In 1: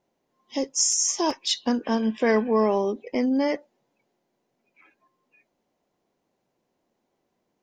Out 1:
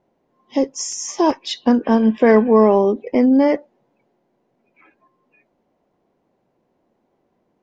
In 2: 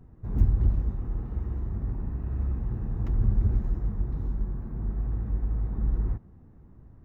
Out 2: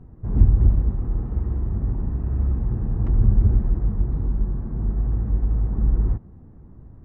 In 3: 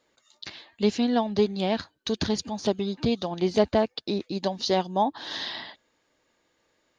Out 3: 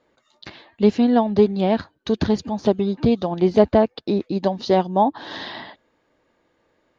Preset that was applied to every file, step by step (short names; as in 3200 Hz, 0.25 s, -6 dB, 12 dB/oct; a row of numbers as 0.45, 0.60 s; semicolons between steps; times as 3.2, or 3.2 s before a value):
LPF 1200 Hz 6 dB/oct; normalise peaks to -2 dBFS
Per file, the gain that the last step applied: +9.5, +7.0, +7.5 dB